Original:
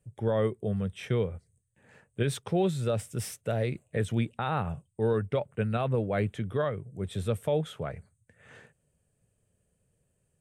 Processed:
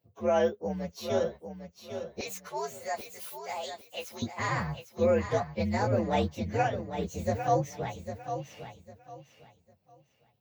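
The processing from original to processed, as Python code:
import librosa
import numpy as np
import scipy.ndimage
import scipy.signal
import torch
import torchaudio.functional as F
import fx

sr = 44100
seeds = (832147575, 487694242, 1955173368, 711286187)

y = fx.partial_stretch(x, sr, pct=123)
y = fx.highpass(y, sr, hz=fx.steps((0.0, 250.0), (2.21, 890.0), (4.22, 130.0)), slope=12)
y = fx.echo_feedback(y, sr, ms=802, feedback_pct=25, wet_db=-9.0)
y = y * 10.0 ** (4.0 / 20.0)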